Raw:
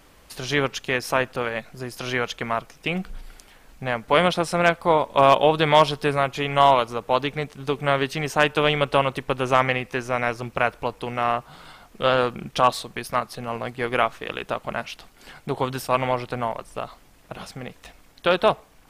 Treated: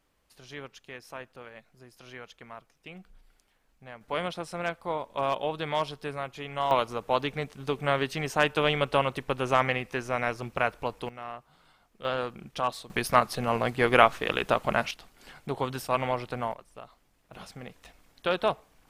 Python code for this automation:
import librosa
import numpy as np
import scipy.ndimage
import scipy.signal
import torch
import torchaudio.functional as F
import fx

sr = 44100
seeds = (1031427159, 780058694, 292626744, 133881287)

y = fx.gain(x, sr, db=fx.steps((0.0, -19.5), (4.01, -13.0), (6.71, -5.0), (11.09, -17.0), (12.05, -10.5), (12.9, 2.5), (14.91, -5.5), (16.54, -14.5), (17.33, -7.5)))